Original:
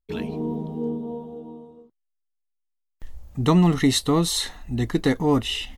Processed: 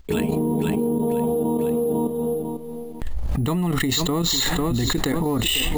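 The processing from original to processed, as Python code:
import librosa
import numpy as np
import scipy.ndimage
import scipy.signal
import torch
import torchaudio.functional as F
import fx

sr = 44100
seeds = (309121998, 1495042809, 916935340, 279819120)

p1 = fx.level_steps(x, sr, step_db=10)
p2 = p1 * (1.0 - 0.59 / 2.0 + 0.59 / 2.0 * np.cos(2.0 * np.pi * 0.7 * (np.arange(len(p1)) / sr)))
p3 = p2 + fx.echo_feedback(p2, sr, ms=498, feedback_pct=35, wet_db=-16, dry=0)
p4 = np.repeat(scipy.signal.resample_poly(p3, 1, 4), 4)[:len(p3)]
p5 = fx.env_flatten(p4, sr, amount_pct=100)
y = F.gain(torch.from_numpy(p5), -1.5).numpy()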